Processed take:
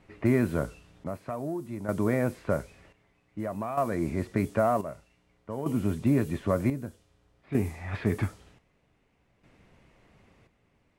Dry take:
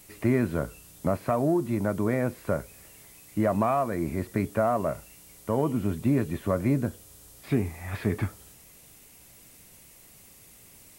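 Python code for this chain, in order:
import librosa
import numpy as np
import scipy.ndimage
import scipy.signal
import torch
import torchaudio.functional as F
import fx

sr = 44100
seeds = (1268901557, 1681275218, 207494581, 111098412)

y = fx.env_lowpass(x, sr, base_hz=1800.0, full_db=-21.5)
y = fx.chopper(y, sr, hz=0.53, depth_pct=65, duty_pct=55)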